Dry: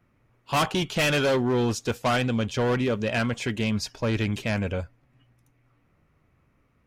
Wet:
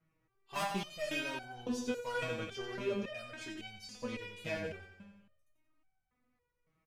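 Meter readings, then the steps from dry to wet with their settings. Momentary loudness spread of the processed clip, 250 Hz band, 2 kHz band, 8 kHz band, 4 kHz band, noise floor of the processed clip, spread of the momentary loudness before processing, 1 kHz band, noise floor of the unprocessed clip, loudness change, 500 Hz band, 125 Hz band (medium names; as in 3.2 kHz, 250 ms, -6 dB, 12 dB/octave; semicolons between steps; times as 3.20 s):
10 LU, -15.0 dB, -12.0 dB, -13.0 dB, -13.0 dB, -82 dBFS, 5 LU, -13.0 dB, -67 dBFS, -14.0 dB, -13.0 dB, -21.0 dB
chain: feedback delay 89 ms, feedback 57%, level -8 dB; resonator arpeggio 3.6 Hz 160–760 Hz; trim +1 dB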